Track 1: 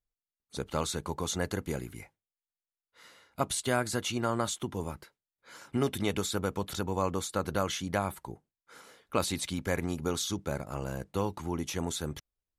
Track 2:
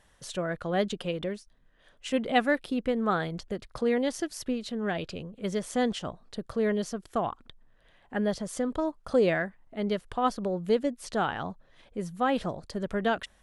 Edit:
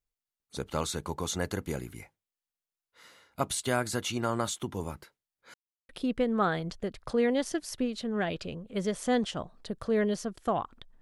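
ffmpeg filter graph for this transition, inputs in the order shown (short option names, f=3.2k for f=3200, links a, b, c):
-filter_complex "[0:a]apad=whole_dur=11.01,atrim=end=11.01,asplit=2[a][b];[a]atrim=end=5.54,asetpts=PTS-STARTPTS,afade=t=out:st=5.536:d=0.004:c=hsin[c];[b]atrim=start=5.54:end=5.89,asetpts=PTS-STARTPTS,volume=0[d];[1:a]atrim=start=2.57:end=7.69,asetpts=PTS-STARTPTS,afade=t=in:d=0.004:c=hsin[e];[c][d][e]concat=n=3:v=0:a=1"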